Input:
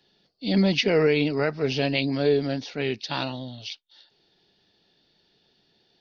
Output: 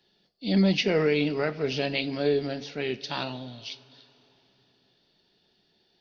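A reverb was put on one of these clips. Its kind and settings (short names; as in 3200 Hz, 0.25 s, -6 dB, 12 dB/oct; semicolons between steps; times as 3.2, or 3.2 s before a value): two-slope reverb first 0.3 s, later 3.7 s, from -19 dB, DRR 10.5 dB; gain -3 dB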